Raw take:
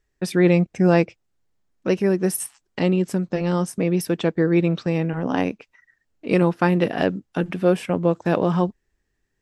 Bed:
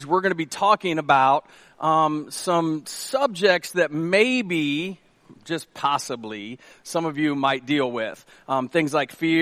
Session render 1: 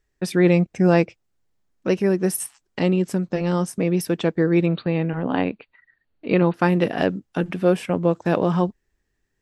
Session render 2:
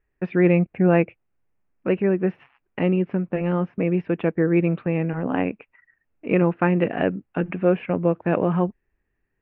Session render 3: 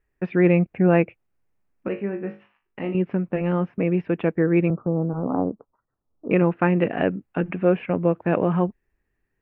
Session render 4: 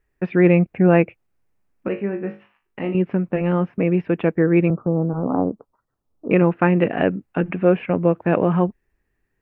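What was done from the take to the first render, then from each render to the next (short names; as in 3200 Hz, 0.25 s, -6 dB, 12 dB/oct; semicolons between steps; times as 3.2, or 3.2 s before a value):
4.66–6.54 brick-wall FIR low-pass 4700 Hz
elliptic low-pass 2600 Hz, stop band 70 dB; dynamic EQ 950 Hz, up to -3 dB, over -35 dBFS, Q 2.2
1.88–2.95 resonator 51 Hz, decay 0.31 s, mix 90%; 4.7–6.31 steep low-pass 1300 Hz 72 dB/oct
gain +3 dB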